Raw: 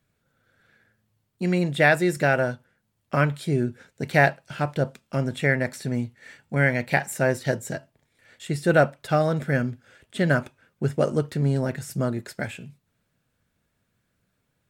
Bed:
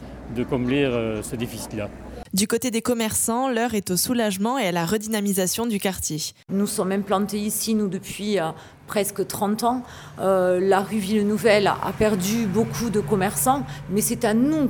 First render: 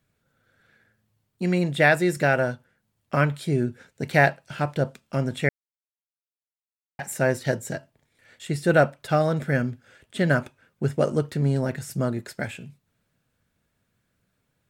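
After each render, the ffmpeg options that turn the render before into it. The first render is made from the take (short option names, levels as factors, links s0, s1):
-filter_complex "[0:a]asplit=3[s0][s1][s2];[s0]atrim=end=5.49,asetpts=PTS-STARTPTS,afade=t=out:st=5.486:d=0.004:c=hsin[s3];[s1]atrim=start=5.49:end=6.99,asetpts=PTS-STARTPTS,volume=0[s4];[s2]atrim=start=6.99,asetpts=PTS-STARTPTS,afade=t=in:d=0.004:c=hsin[s5];[s3][s4][s5]concat=n=3:v=0:a=1"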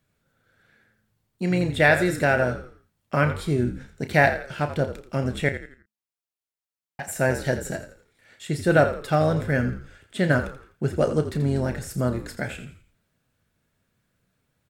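-filter_complex "[0:a]asplit=2[s0][s1];[s1]adelay=32,volume=0.299[s2];[s0][s2]amix=inputs=2:normalize=0,asplit=2[s3][s4];[s4]asplit=4[s5][s6][s7][s8];[s5]adelay=84,afreqshift=-54,volume=0.282[s9];[s6]adelay=168,afreqshift=-108,volume=0.105[s10];[s7]adelay=252,afreqshift=-162,volume=0.0385[s11];[s8]adelay=336,afreqshift=-216,volume=0.0143[s12];[s9][s10][s11][s12]amix=inputs=4:normalize=0[s13];[s3][s13]amix=inputs=2:normalize=0"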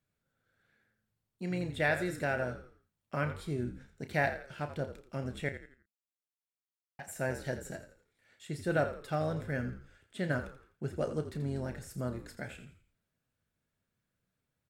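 -af "volume=0.251"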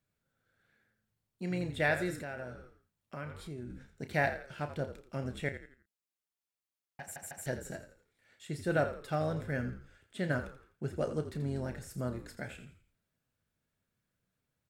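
-filter_complex "[0:a]asettb=1/sr,asplit=3[s0][s1][s2];[s0]atrim=end=2.214[s3];[s1]atrim=start=2.21:end=3.7,asetpts=PTS-STARTPTS,afade=t=in:d=0.004:c=qsin,afade=t=out:st=1.486:d=0.004:c=qsin,acompressor=threshold=0.00562:ratio=2:attack=3.2:release=140:knee=1:detection=peak[s4];[s2]atrim=start=3.696[s5];[s3][s4]acrossfade=d=0.004:c1=hsin:c2=qsin[s6];[s6][s5]acrossfade=d=0.004:c1=qsin:c2=hsin,asplit=4[s7][s8][s9][s10];[s7]atrim=end=7.162[s11];[s8]atrim=start=7.008:end=7.162[s12];[s9]atrim=start=7.008:end=7.162[s13];[s10]atrim=start=7.458[s14];[s11][s12]acrossfade=d=0.004:c1=hsin:c2=hsin[s15];[s15][s13]acrossfade=d=0.004:c1=hsin:c2=hsin[s16];[s16][s14]acrossfade=d=0.004:c1=hsin:c2=hsin"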